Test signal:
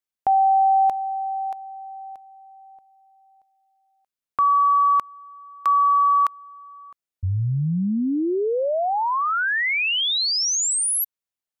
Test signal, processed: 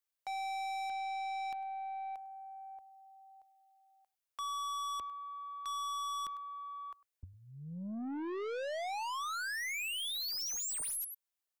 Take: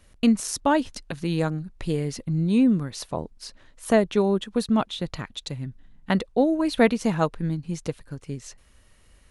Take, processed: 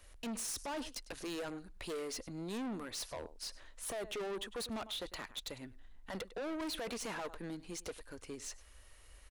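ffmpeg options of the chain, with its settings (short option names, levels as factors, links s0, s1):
-filter_complex "[0:a]acrossover=split=100[s0][s1];[s0]acompressor=threshold=0.00398:ratio=12:attack=48:release=282[s2];[s1]highpass=410[s3];[s2][s3]amix=inputs=2:normalize=0,alimiter=limit=0.1:level=0:latency=1:release=11,highshelf=f=10000:g=4,aecho=1:1:101:0.075,aeval=exprs='(tanh(63.1*val(0)+0.05)-tanh(0.05))/63.1':c=same,volume=0.841"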